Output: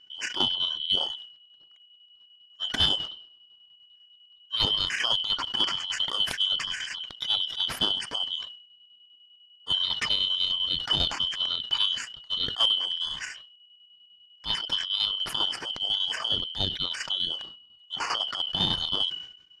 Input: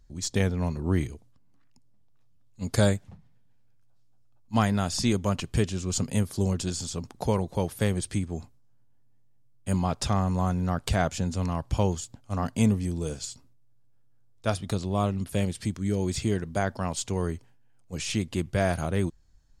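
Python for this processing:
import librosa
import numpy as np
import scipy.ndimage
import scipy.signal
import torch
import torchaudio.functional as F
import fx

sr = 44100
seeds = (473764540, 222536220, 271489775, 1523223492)

p1 = fx.band_shuffle(x, sr, order='2413')
p2 = fx.fold_sine(p1, sr, drive_db=8, ceiling_db=-7.5)
p3 = p1 + (p2 * librosa.db_to_amplitude(-10.0))
p4 = fx.curve_eq(p3, sr, hz=(530.0, 1400.0, 5900.0), db=(0, 3, -21))
p5 = fx.chopper(p4, sr, hz=10.0, depth_pct=60, duty_pct=55)
p6 = fx.peak_eq(p5, sr, hz=5200.0, db=14.5, octaves=0.79)
y = fx.sustainer(p6, sr, db_per_s=82.0)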